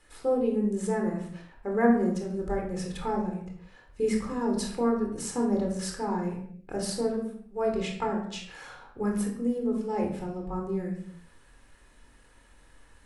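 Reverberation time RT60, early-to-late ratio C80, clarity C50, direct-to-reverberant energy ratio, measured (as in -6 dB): 0.70 s, 8.5 dB, 5.0 dB, 0.5 dB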